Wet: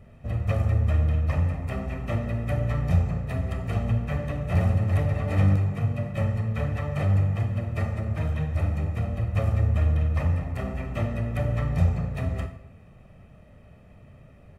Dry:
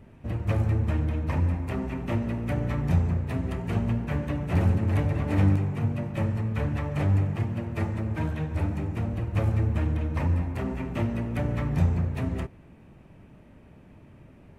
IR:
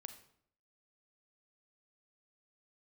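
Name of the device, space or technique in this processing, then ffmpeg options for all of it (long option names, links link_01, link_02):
microphone above a desk: -filter_complex "[0:a]aecho=1:1:1.6:0.59[link_01];[1:a]atrim=start_sample=2205[link_02];[link_01][link_02]afir=irnorm=-1:irlink=0,volume=4.5dB"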